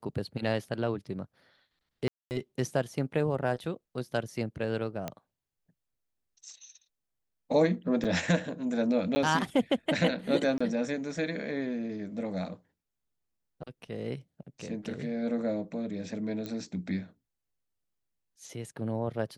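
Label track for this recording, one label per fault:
2.080000	2.310000	gap 0.229 s
5.080000	5.080000	pop -19 dBFS
8.040000	8.050000	gap 7.3 ms
9.150000	9.160000	gap 10 ms
10.580000	10.610000	gap 25 ms
16.460000	16.460000	pop -23 dBFS

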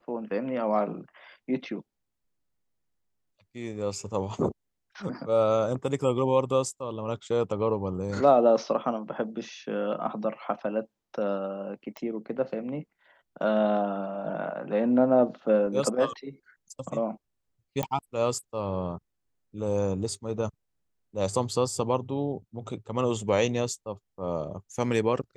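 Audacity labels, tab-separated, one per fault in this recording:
11.970000	11.970000	pop -24 dBFS
17.830000	17.830000	pop -14 dBFS

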